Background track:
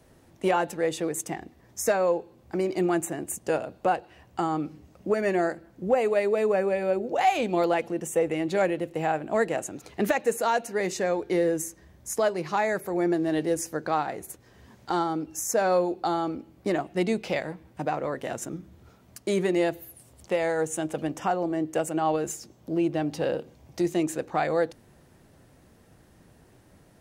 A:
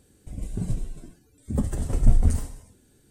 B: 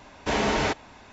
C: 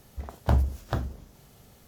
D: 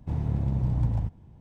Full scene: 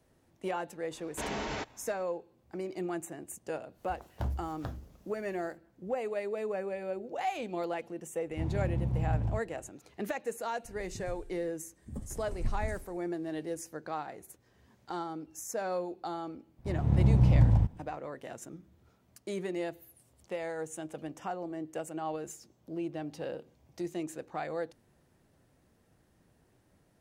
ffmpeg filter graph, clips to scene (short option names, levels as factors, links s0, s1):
-filter_complex "[4:a]asplit=2[s0][s1];[0:a]volume=0.282[s2];[2:a]alimiter=limit=0.158:level=0:latency=1:release=20[s3];[3:a]asoftclip=type=tanh:threshold=0.237[s4];[s1]dynaudnorm=f=120:g=5:m=3.98[s5];[s3]atrim=end=1.12,asetpts=PTS-STARTPTS,volume=0.282,afade=t=in:d=0.004:c=hsin,afade=t=out:st=1.116:d=0.004:c=hsin,adelay=910[s6];[s4]atrim=end=1.87,asetpts=PTS-STARTPTS,volume=0.299,afade=t=in:d=0.1,afade=t=out:st=1.77:d=0.1,adelay=3720[s7];[s0]atrim=end=1.4,asetpts=PTS-STARTPTS,volume=0.562,afade=t=in:d=0.004:c=hsin,afade=t=out:st=1.396:d=0.004:c=hsin,adelay=8300[s8];[1:a]atrim=end=3.1,asetpts=PTS-STARTPTS,volume=0.158,afade=t=in:d=0.004:c=hsin,afade=t=out:st=3.096:d=0.004:c=hsin,adelay=10380[s9];[s5]atrim=end=1.4,asetpts=PTS-STARTPTS,volume=0.422,afade=t=in:d=0.004:c=hsin,afade=t=out:st=1.396:d=0.004:c=hsin,adelay=16580[s10];[s2][s6][s7][s8][s9][s10]amix=inputs=6:normalize=0"